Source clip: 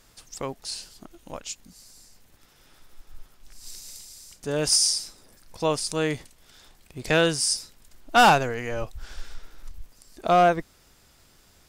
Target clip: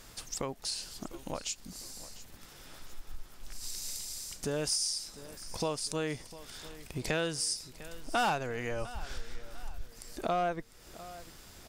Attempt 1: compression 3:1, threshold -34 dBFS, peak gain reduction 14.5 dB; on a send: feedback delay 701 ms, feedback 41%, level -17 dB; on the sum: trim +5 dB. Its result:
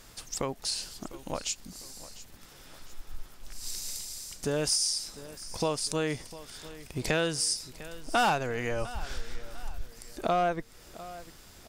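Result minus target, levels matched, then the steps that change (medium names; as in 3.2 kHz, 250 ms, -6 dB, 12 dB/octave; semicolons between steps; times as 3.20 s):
compression: peak gain reduction -4 dB
change: compression 3:1, threshold -40 dBFS, peak gain reduction 18.5 dB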